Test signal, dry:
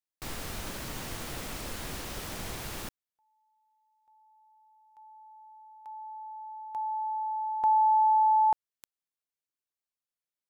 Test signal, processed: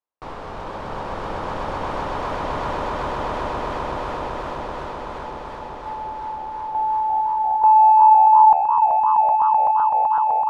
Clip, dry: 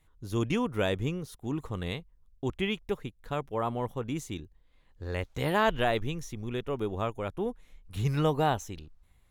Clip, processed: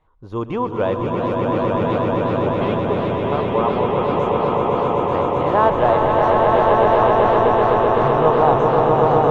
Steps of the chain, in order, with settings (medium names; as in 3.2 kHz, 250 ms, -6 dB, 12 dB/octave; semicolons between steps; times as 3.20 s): low-pass 2.8 kHz 12 dB/octave; in parallel at -12 dB: saturation -25 dBFS; on the sum: ten-band graphic EQ 500 Hz +7 dB, 1 kHz +12 dB, 2 kHz -4 dB; echo with a slow build-up 127 ms, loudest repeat 8, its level -4 dB; modulated delay 352 ms, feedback 63%, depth 160 cents, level -10.5 dB; trim -1 dB